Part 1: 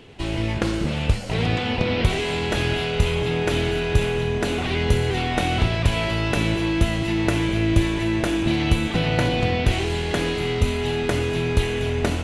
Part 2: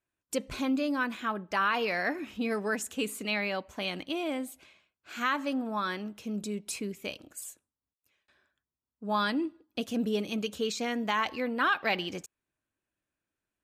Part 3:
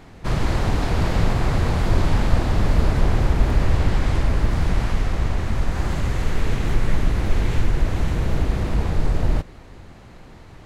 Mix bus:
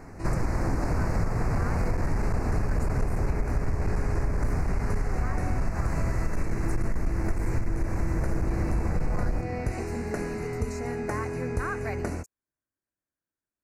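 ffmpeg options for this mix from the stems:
-filter_complex "[0:a]volume=-8.5dB[a];[1:a]volume=-6.5dB[b];[2:a]volume=0dB[c];[a][b][c]amix=inputs=3:normalize=0,aeval=exprs='clip(val(0),-1,0.211)':c=same,asuperstop=centerf=3300:order=4:qfactor=1.1,acompressor=threshold=-22dB:ratio=6"

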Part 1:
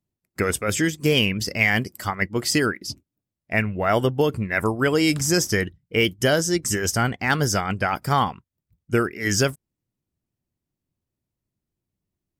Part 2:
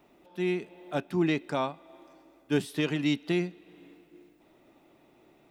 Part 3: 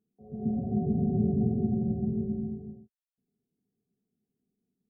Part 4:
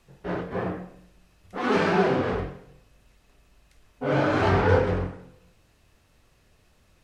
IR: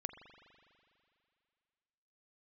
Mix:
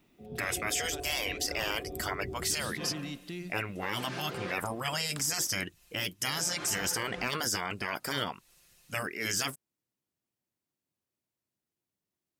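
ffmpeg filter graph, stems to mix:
-filter_complex "[0:a]highpass=f=540:p=1,volume=0dB,asplit=2[a][b];[1:a]equalizer=f=700:t=o:w=2.3:g=-13.5,alimiter=level_in=7.5dB:limit=-24dB:level=0:latency=1,volume=-7.5dB,volume=1dB[c];[2:a]volume=2.5dB[d];[3:a]aecho=1:1:5.7:0.91,crystalizer=i=9:c=0,adelay=2250,volume=-13.5dB[e];[b]apad=whole_len=409772[f];[e][f]sidechaincompress=threshold=-35dB:ratio=10:attack=26:release=217[g];[a][c][d][g]amix=inputs=4:normalize=0,afftfilt=real='re*lt(hypot(re,im),0.158)':imag='im*lt(hypot(re,im),0.158)':win_size=1024:overlap=0.75,alimiter=limit=-20dB:level=0:latency=1:release=18"

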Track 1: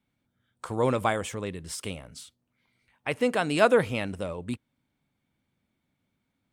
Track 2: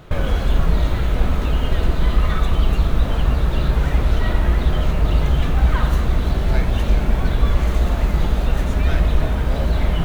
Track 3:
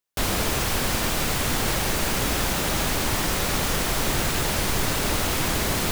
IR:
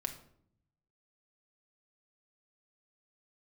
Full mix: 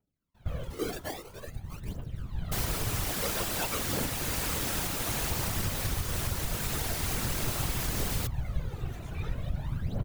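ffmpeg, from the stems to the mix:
-filter_complex "[0:a]acrusher=samples=40:mix=1:aa=0.000001:lfo=1:lforange=40:lforate=0.5,volume=-8dB,asplit=2[a][b];[1:a]adelay=350,volume=-15dB[c];[2:a]adelay=2350,volume=-3dB[d];[b]apad=whole_len=458314[e];[c][e]sidechaincompress=threshold=-49dB:ratio=8:attack=25:release=855[f];[a][f]amix=inputs=2:normalize=0,aphaser=in_gain=1:out_gain=1:delay=3.1:decay=0.74:speed=0.5:type=triangular,alimiter=limit=-16dB:level=0:latency=1:release=115,volume=0dB[g];[d][g]amix=inputs=2:normalize=0,highshelf=f=7.4k:g=6.5,afftfilt=real='hypot(re,im)*cos(2*PI*random(0))':imag='hypot(re,im)*sin(2*PI*random(1))':win_size=512:overlap=0.75,alimiter=limit=-19.5dB:level=0:latency=1:release=320"

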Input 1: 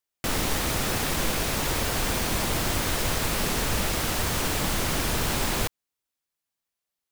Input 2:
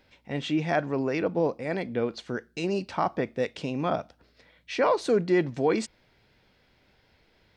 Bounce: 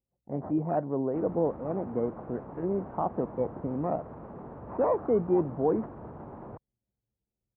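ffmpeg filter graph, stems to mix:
-filter_complex "[0:a]alimiter=limit=-22.5dB:level=0:latency=1:release=60,adelay=900,volume=-6.5dB[a];[1:a]acrusher=samples=13:mix=1:aa=0.000001:lfo=1:lforange=7.8:lforate=0.63,volume=-1.5dB[b];[a][b]amix=inputs=2:normalize=0,highpass=94,anlmdn=0.0631,lowpass=f=1k:w=0.5412,lowpass=f=1k:w=1.3066"

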